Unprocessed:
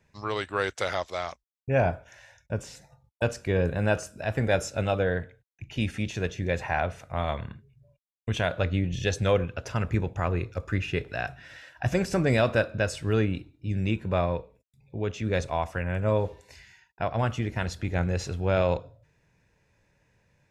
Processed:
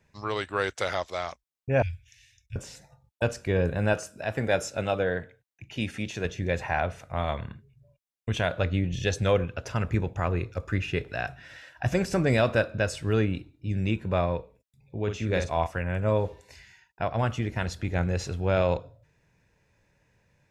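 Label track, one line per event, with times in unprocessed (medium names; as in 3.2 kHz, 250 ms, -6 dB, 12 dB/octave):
1.820000	2.560000	inverse Chebyshev band-stop 200–1300 Hz
3.930000	6.250000	high-pass 160 Hz 6 dB/octave
15.030000	15.670000	doubling 48 ms -6.5 dB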